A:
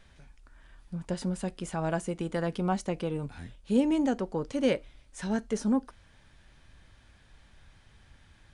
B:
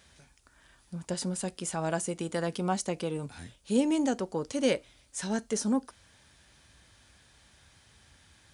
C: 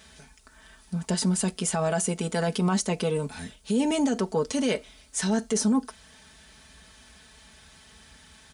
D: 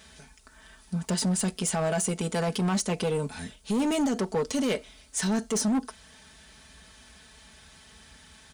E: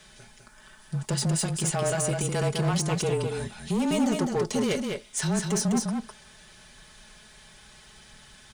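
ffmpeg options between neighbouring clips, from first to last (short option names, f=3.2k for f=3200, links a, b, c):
-af "highpass=f=53:w=0.5412,highpass=f=53:w=1.3066,bass=f=250:g=-3,treble=f=4k:g=10"
-af "aecho=1:1:4.6:0.74,alimiter=limit=-22.5dB:level=0:latency=1:release=34,volume=6dB"
-af "volume=22dB,asoftclip=hard,volume=-22dB"
-af "afreqshift=-28,aecho=1:1:205:0.596"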